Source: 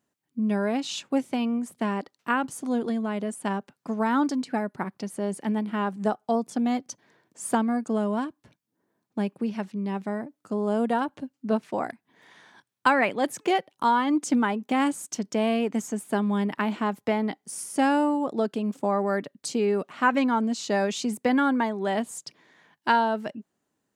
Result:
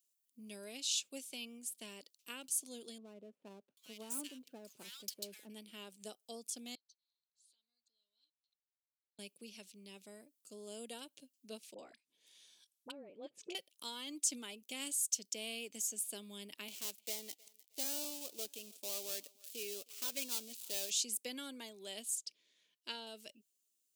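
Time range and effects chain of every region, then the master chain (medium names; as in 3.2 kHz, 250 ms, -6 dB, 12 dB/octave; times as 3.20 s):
2.98–5.50 s: bands offset in time lows, highs 790 ms, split 1.5 kHz + sliding maximum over 3 samples
6.75–9.19 s: compression, threshold -29 dBFS + band-pass filter 4.1 kHz, Q 15 + tilt EQ -3 dB/octave
11.74–13.55 s: low-pass that closes with the level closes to 430 Hz, closed at -18.5 dBFS + peaking EQ 2 kHz -4 dB 0.25 oct + phase dispersion highs, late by 47 ms, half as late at 800 Hz
16.68–20.91 s: dead-time distortion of 0.11 ms + tone controls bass -8 dB, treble -1 dB + thinning echo 313 ms, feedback 28%, high-pass 470 Hz, level -23 dB
22.15–23.07 s: low-pass 3.3 kHz 6 dB/octave + band-stop 790 Hz, Q 6.3
whole clip: high-order bell 1.2 kHz -16 dB; de-esser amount 50%; differentiator; trim +2.5 dB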